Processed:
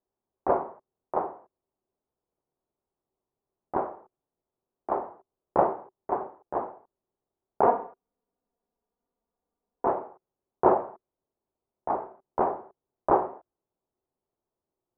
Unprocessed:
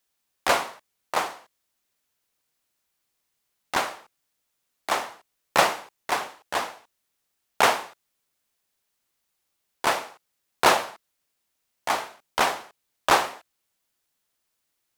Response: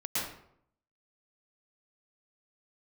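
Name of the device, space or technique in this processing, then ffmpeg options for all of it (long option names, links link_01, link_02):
under water: -filter_complex "[0:a]lowpass=frequency=930:width=0.5412,lowpass=frequency=930:width=1.3066,equalizer=frequency=380:width_type=o:width=0.26:gain=9,asettb=1/sr,asplit=3[link_01][link_02][link_03];[link_01]atrim=end=7.664[link_04];[link_02]atrim=start=7.66:end=9.87,asetpts=PTS-STARTPTS,afade=type=in:duration=0.004:curve=qsin,afade=type=out:start_time=2.206:duration=0.004:curve=qsin,aecho=1:1:4.2:0.87,atrim=end_sample=97461[link_05];[link_03]atrim=start=9.866[link_06];[link_04][link_05]acrossfade=duration=0.004:curve1=hsin:curve2=qsin[link_07];[link_07][link_06]acrossfade=duration=0.004:curve1=qsin:curve2=hsin"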